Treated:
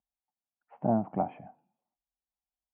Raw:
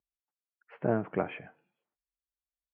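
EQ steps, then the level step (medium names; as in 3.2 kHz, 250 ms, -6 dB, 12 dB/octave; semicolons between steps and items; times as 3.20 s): FFT filter 160 Hz 0 dB, 230 Hz +6 dB, 440 Hz -11 dB, 770 Hz +9 dB, 1.6 kHz -17 dB, 2.8 kHz -15 dB; 0.0 dB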